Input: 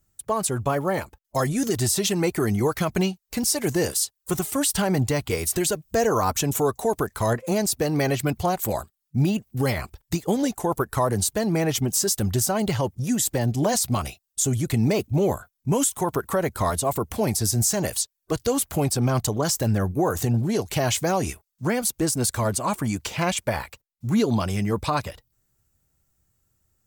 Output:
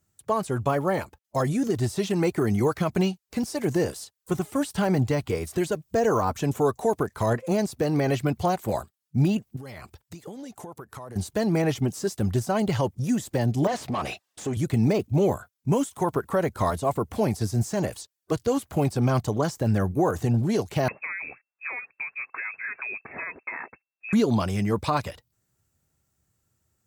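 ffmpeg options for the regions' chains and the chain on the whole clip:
-filter_complex "[0:a]asettb=1/sr,asplit=3[s0][s1][s2];[s0]atrim=end=9.564[s3];[s1]atrim=start=9.56:end=11.16,asetpts=PTS-STARTPTS,afade=t=in:d=0.004:c=qsin,afade=t=out:st=1.596:d=0.004:c=qsin,highpass=59,acompressor=threshold=0.0178:ratio=20:attack=3.2:release=140:knee=1:detection=peak[s4];[s2]atrim=start=11.156[s5];[s3][s4]acrossfade=d=0.004:c1=hsin:c2=qsin[s6];[s6][s5]acrossfade=d=0.004:c1=qsin:c2=hsin,asettb=1/sr,asplit=3[s7][s8][s9];[s7]atrim=end=13.674[s10];[s8]atrim=start=13.67:end=14.57,asetpts=PTS-STARTPTS,afade=t=in:d=0.004:c=qsin,afade=t=out:st=0.896:d=0.004:c=qsin,acompressor=threshold=0.0251:ratio=6:attack=3.2:release=140:knee=1:detection=peak,asplit=2[s11][s12];[s12]highpass=f=720:p=1,volume=22.4,asoftclip=type=tanh:threshold=0.158[s13];[s11][s13]amix=inputs=2:normalize=0,lowpass=f=1300:p=1,volume=0.501,bandreject=f=1400:w=12[s14];[s9]atrim=start=14.566[s15];[s10][s14]acrossfade=d=0.004:c1=hsin:c2=qsin[s16];[s16][s15]acrossfade=d=0.004:c1=qsin:c2=hsin,asettb=1/sr,asplit=3[s17][s18][s19];[s17]atrim=end=20.884[s20];[s18]atrim=start=20.88:end=24.13,asetpts=PTS-STARTPTS,afade=t=in:d=0.004:c=qsin,afade=t=out:st=3.246:d=0.004:c=qsin,equalizer=f=88:w=0.58:g=-12.5,acompressor=threshold=0.0398:ratio=12:attack=3.2:release=140:knee=1:detection=peak,lowpass=f=2300:t=q:w=0.5098,lowpass=f=2300:t=q:w=0.6013,lowpass=f=2300:t=q:w=0.9,lowpass=f=2300:t=q:w=2.563,afreqshift=-2700[s21];[s19]atrim=start=24.126[s22];[s20][s21]acrossfade=d=0.004:c1=hsin:c2=qsin[s23];[s23][s22]acrossfade=d=0.004:c1=qsin:c2=hsin,highpass=76,deesser=0.75,highshelf=f=12000:g=-7.5"

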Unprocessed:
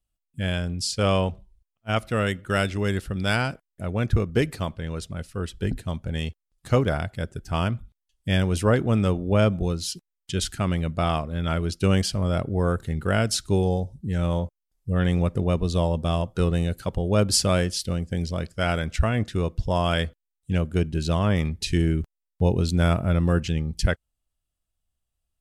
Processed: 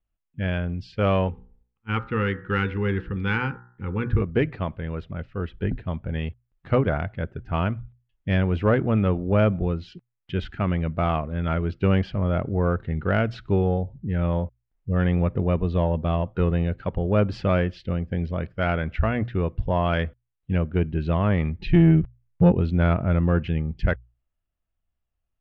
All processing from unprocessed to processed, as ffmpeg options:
-filter_complex "[0:a]asettb=1/sr,asplit=3[s0][s1][s2];[s0]atrim=end=1.284[s3];[s1]atrim=start=1.28:end=4.22,asetpts=PTS-STARTPTS,afade=t=in:d=0.004:c=qsin,afade=t=out:st=2.936:d=0.004:c=qsin,asuperstop=centerf=640:order=12:qfactor=2.5,bandreject=f=61.05:t=h:w=4,bandreject=f=122.1:t=h:w=4,bandreject=f=183.15:t=h:w=4,bandreject=f=244.2:t=h:w=4,bandreject=f=305.25:t=h:w=4,bandreject=f=366.3:t=h:w=4,bandreject=f=427.35:t=h:w=4,bandreject=f=488.4:t=h:w=4,bandreject=f=549.45:t=h:w=4,bandreject=f=610.5:t=h:w=4,bandreject=f=671.55:t=h:w=4,bandreject=f=732.6:t=h:w=4,bandreject=f=793.65:t=h:w=4,bandreject=f=854.7:t=h:w=4,bandreject=f=915.75:t=h:w=4,bandreject=f=976.8:t=h:w=4,bandreject=f=1037.85:t=h:w=4,bandreject=f=1098.9:t=h:w=4,bandreject=f=1159.95:t=h:w=4,bandreject=f=1221:t=h:w=4,bandreject=f=1282.05:t=h:w=4,bandreject=f=1343.1:t=h:w=4,bandreject=f=1404.15:t=h:w=4,bandreject=f=1465.2:t=h:w=4,bandreject=f=1526.25:t=h:w=4,bandreject=f=1587.3:t=h:w=4,bandreject=f=1648.35:t=h:w=4,bandreject=f=1709.4:t=h:w=4,bandreject=f=1770.45:t=h:w=4,bandreject=f=1831.5:t=h:w=4,bandreject=f=1892.55:t=h:w=4[s4];[s2]atrim=start=4.216[s5];[s3][s4]acrossfade=d=0.004:c1=hsin:c2=qsin[s6];[s6][s5]acrossfade=d=0.004:c1=qsin:c2=hsin,asettb=1/sr,asplit=3[s7][s8][s9];[s7]atrim=end=21.594[s10];[s8]atrim=start=21.59:end=22.52,asetpts=PTS-STARTPTS,afade=t=in:d=0.004:c=qsin,afade=t=out:st=0.926:d=0.004:c=qsin,lowpass=5200,lowshelf=f=180:g=7.5,aecho=1:1:5.9:0.97,atrim=end_sample=41013[s11];[s9]atrim=start=22.516[s12];[s10][s11]acrossfade=d=0.004:c1=hsin:c2=qsin[s13];[s13][s12]acrossfade=d=0.004:c1=qsin:c2=hsin,lowpass=f=2600:w=0.5412,lowpass=f=2600:w=1.3066,bandreject=f=60:t=h:w=6,bandreject=f=120:t=h:w=6,acontrast=47,volume=0.562"

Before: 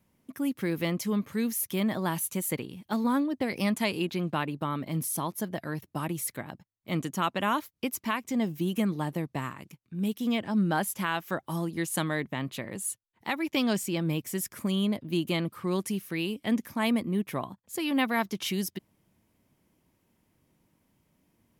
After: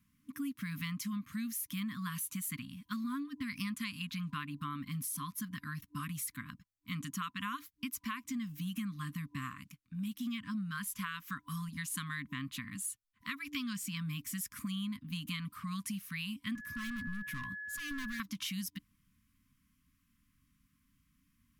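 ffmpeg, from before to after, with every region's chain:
-filter_complex "[0:a]asettb=1/sr,asplit=3[s0][s1][s2];[s0]atrim=end=16.554[s3];[s1]atrim=start=16.55:end=18.2,asetpts=PTS-STARTPTS,afade=t=in:d=0.004:c=qsin,afade=t=out:st=1.646:d=0.004:c=qsin,volume=56.2,asoftclip=hard,volume=0.0178,equalizer=f=100:t=o:w=1.4:g=7,aeval=exprs='val(0)+0.0126*sin(2*PI*1700*n/s)':c=same[s4];[s2]atrim=start=18.196[s5];[s3][s4]acrossfade=d=0.004:c1=hsin:c2=qsin[s6];[s6][s5]acrossfade=d=0.004:c1=qsin:c2=hsin,afftfilt=real='re*(1-between(b*sr/4096,300,1000))':imag='im*(1-between(b*sr/4096,300,1000))':win_size=4096:overlap=0.75,asubboost=boost=3.5:cutoff=58,acompressor=threshold=0.0224:ratio=6,volume=0.75"

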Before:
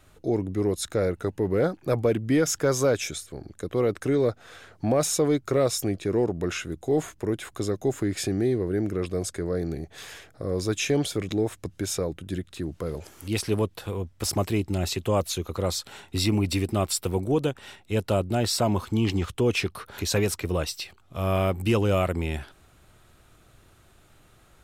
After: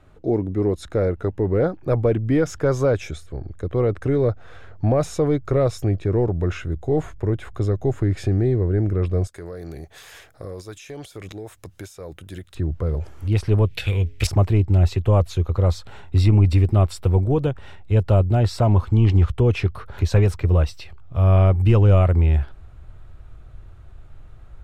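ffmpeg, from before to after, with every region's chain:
-filter_complex "[0:a]asettb=1/sr,asplit=3[s0][s1][s2];[s0]atrim=end=9.274[s3];[s1]atrim=start=9.27:end=12.55,asetpts=PTS-STARTPTS,afade=t=in:d=0.004:c=qsin,afade=t=out:st=3.276:d=0.004:c=qsin,aemphasis=mode=production:type=riaa,acompressor=threshold=0.0251:ratio=12:attack=3.2:release=140:knee=1:detection=peak[s4];[s2]atrim=start=12.546[s5];[s3][s4]acrossfade=d=0.004:c1=hsin:c2=qsin[s6];[s6][s5]acrossfade=d=0.004:c1=qsin:c2=hsin,asettb=1/sr,asplit=3[s7][s8][s9];[s7]atrim=end=13.664[s10];[s8]atrim=start=13.66:end=14.27,asetpts=PTS-STARTPTS,afade=t=in:d=0.004:c=qsin,afade=t=out:st=0.606:d=0.004:c=qsin,highshelf=f=1600:t=q:w=3:g=13.5,bandreject=f=138.1:t=h:w=4,bandreject=f=276.2:t=h:w=4,bandreject=f=414.3:t=h:w=4,bandreject=f=552.4:t=h:w=4[s11];[s9]atrim=start=14.266[s12];[s10][s11]acrossfade=d=0.004:c1=hsin:c2=qsin[s13];[s13][s12]acrossfade=d=0.004:c1=qsin:c2=hsin,lowpass=f=1100:p=1,asubboost=boost=6:cutoff=91,volume=1.78"

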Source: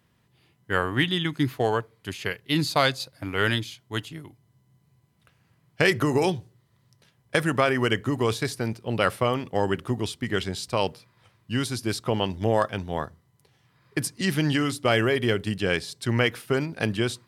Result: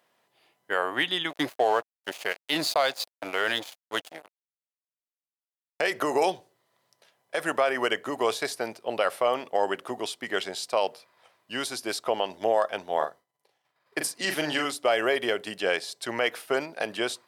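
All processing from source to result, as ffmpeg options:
-filter_complex "[0:a]asettb=1/sr,asplit=3[s0][s1][s2];[s0]atrim=end=1.304[s3];[s1]atrim=start=1.3:end=5.81,asetpts=PTS-STARTPTS,afade=t=in:d=0.004:c=qsin,afade=t=out:st=4.506:d=0.004:c=qsin,acontrast=21,aeval=exprs='sgn(val(0))*max(abs(val(0))-0.0211,0)':c=same[s4];[s2]atrim=start=5.806[s5];[s3][s4]acrossfade=d=0.004:c1=hsin:c2=qsin[s6];[s6][s5]acrossfade=d=0.004:c1=qsin:c2=hsin,asettb=1/sr,asplit=3[s7][s8][s9];[s7]atrim=end=12.964[s10];[s8]atrim=start=12.96:end=14.65,asetpts=PTS-STARTPTS,afade=t=in:d=0.004:c=qsin,afade=t=out:st=1.686:d=0.004:c=qsin,agate=range=0.0224:threshold=0.00158:ratio=3:release=100:detection=peak,asplit=2[s11][s12];[s12]adelay=40,volume=0.501[s13];[s11][s13]amix=inputs=2:normalize=0,atrim=end_sample=74529[s14];[s9]atrim=start=14.646[s15];[s10][s14]acrossfade=d=0.004:c1=hsin:c2=qsin[s16];[s16][s15]acrossfade=d=0.004:c1=qsin:c2=hsin,highpass=460,equalizer=f=660:t=o:w=0.78:g=8,alimiter=limit=0.237:level=0:latency=1:release=107"

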